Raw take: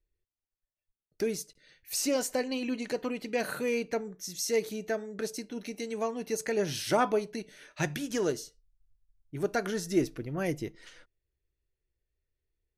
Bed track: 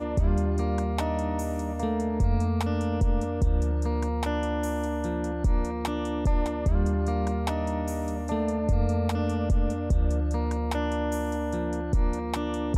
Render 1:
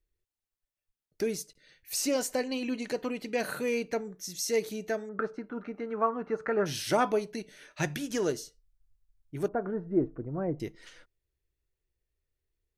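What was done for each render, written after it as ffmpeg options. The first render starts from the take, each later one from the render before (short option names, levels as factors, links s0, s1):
-filter_complex "[0:a]asettb=1/sr,asplit=3[s0][s1][s2];[s0]atrim=end=5.094[s3];[s1]atrim=start=5.09:end=6.66,asetpts=PTS-STARTPTS,afade=t=in:d=0.004:c=qsin,afade=t=out:st=1.566:d=0.004:c=qsin,lowpass=f=1300:t=q:w=7.4[s4];[s2]atrim=start=6.656[s5];[s3][s4]acrossfade=d=0.004:c1=hsin:c2=qsin[s6];[s6][s5]acrossfade=d=0.004:c1=qsin:c2=hsin,asettb=1/sr,asplit=3[s7][s8][s9];[s7]atrim=end=9.484[s10];[s8]atrim=start=9.48:end=10.6,asetpts=PTS-STARTPTS,afade=t=in:d=0.004:c=qsin,afade=t=out:st=1.116:d=0.004:c=qsin,lowpass=f=1200:w=0.5412,lowpass=f=1200:w=1.3066[s11];[s9]atrim=start=10.596[s12];[s10][s11]acrossfade=d=0.004:c1=hsin:c2=qsin[s13];[s13][s12]acrossfade=d=0.004:c1=qsin:c2=hsin"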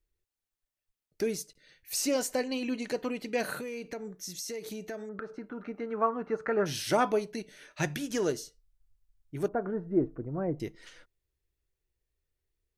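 -filter_complex "[0:a]asettb=1/sr,asplit=3[s0][s1][s2];[s0]atrim=end=3.594[s3];[s1]atrim=start=3.59:end=5.66,asetpts=PTS-STARTPTS,afade=t=in:d=0.004:c=qsin,afade=t=out:st=2.066:d=0.004:c=qsin,acompressor=threshold=0.02:ratio=12:attack=3.2:release=140:knee=1:detection=peak[s4];[s2]atrim=start=5.656[s5];[s3][s4]acrossfade=d=0.004:c1=hsin:c2=qsin[s6];[s6][s5]acrossfade=d=0.004:c1=qsin:c2=hsin"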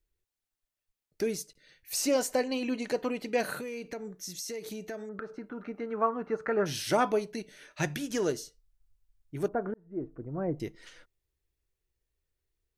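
-filter_complex "[0:a]asettb=1/sr,asplit=3[s0][s1][s2];[s0]atrim=end=1.934[s3];[s1]atrim=start=1.93:end=3.41,asetpts=PTS-STARTPTS,afade=t=in:d=0.004:c=qsin,afade=t=out:st=1.476:d=0.004:c=qsin,equalizer=f=750:t=o:w=1.8:g=3.5[s4];[s2]atrim=start=3.406[s5];[s3][s4]acrossfade=d=0.004:c1=hsin:c2=qsin[s6];[s6][s5]acrossfade=d=0.004:c1=qsin:c2=hsin,asplit=2[s7][s8];[s7]atrim=end=9.74,asetpts=PTS-STARTPTS,afade=t=out:st=9.736:d=0.004:c=hsin[s9];[s8]atrim=start=9.74,asetpts=PTS-STARTPTS,afade=t=in:d=0.71[s10];[s9][s10]concat=n=2:v=0:a=1"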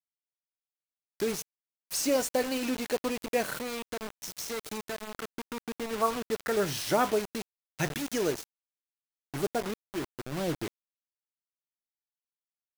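-af "acrusher=bits=5:mix=0:aa=0.000001"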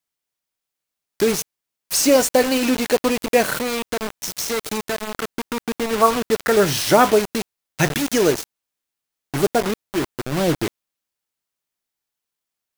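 -af "volume=3.98"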